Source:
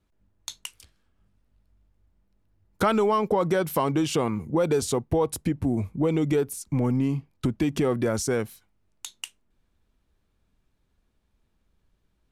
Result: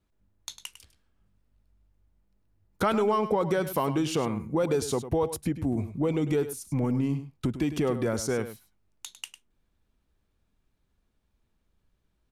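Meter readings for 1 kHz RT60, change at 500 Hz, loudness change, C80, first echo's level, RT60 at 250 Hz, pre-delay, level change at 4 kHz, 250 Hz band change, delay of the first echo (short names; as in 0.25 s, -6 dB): none, -2.5 dB, -2.5 dB, none, -12.0 dB, none, none, -3.0 dB, -2.5 dB, 0.102 s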